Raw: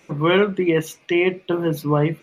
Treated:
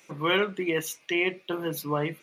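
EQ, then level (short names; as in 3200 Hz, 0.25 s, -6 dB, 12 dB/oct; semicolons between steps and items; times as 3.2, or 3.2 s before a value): tilt +2.5 dB/oct; -6.0 dB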